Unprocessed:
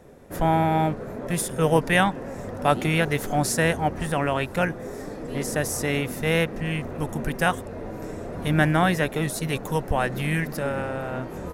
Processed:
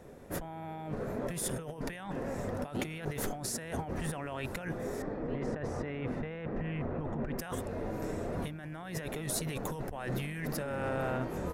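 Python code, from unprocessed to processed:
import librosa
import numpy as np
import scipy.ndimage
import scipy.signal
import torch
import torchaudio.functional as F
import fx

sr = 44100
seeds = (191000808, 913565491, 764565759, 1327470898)

y = fx.lowpass(x, sr, hz=1900.0, slope=12, at=(5.02, 7.38))
y = fx.over_compress(y, sr, threshold_db=-30.0, ratio=-1.0)
y = y * 10.0 ** (-7.0 / 20.0)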